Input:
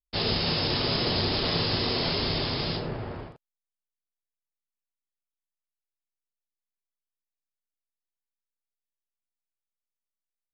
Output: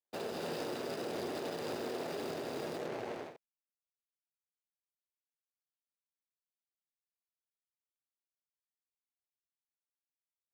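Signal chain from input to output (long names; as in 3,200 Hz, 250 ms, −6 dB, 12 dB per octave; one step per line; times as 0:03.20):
running median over 41 samples
high-pass filter 450 Hz 12 dB per octave
brickwall limiter −33.5 dBFS, peak gain reduction 10 dB
level +4 dB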